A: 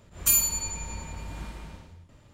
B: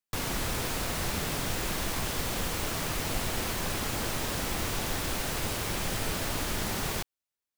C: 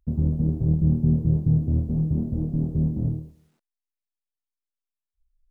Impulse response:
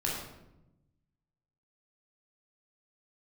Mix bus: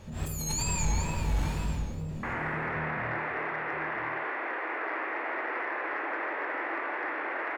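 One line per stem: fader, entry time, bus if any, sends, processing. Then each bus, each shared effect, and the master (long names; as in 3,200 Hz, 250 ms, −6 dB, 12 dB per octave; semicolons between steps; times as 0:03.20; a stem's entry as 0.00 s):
−1.5 dB, 0.00 s, send −6.5 dB, echo send −18.5 dB, compressor whose output falls as the input rises −34 dBFS, ratio −1; noise that follows the level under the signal 30 dB; tape wow and flutter 120 cents
−0.5 dB, 2.10 s, send −5 dB, no echo send, Chebyshev band-pass filter 310–2,100 Hz, order 4; tilt shelving filter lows −6 dB, about 1,100 Hz
−9.5 dB, 0.00 s, no send, echo send −10.5 dB, high-pass filter 91 Hz 24 dB per octave; soft clipping −26.5 dBFS, distortion −7 dB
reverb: on, RT60 0.90 s, pre-delay 15 ms
echo: single-tap delay 978 ms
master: soft clipping −17.5 dBFS, distortion −25 dB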